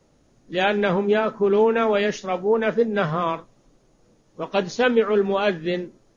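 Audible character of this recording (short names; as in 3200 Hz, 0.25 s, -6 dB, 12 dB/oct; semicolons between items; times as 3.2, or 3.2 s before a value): noise floor -61 dBFS; spectral tilt -4.0 dB/oct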